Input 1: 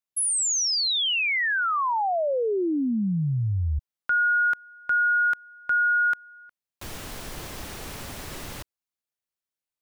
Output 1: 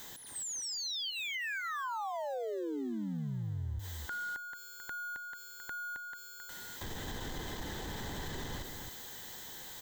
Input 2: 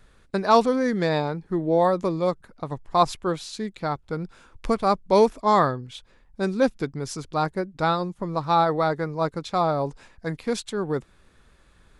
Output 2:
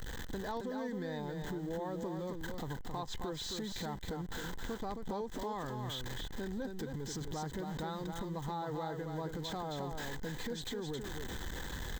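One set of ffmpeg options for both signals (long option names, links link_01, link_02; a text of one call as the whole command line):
ffmpeg -i in.wav -filter_complex "[0:a]aeval=exprs='val(0)+0.5*0.0237*sgn(val(0))':channel_layout=same,acrossover=split=5500[link_01][link_02];[link_02]acompressor=threshold=-42dB:ratio=4:attack=1:release=60[link_03];[link_01][link_03]amix=inputs=2:normalize=0,superequalizer=8b=0.562:10b=0.447:12b=0.282:14b=0.562:16b=0.251,acompressor=threshold=-35dB:ratio=6:attack=4:release=84:knee=1:detection=rms,aecho=1:1:267:0.531,volume=-3dB" out.wav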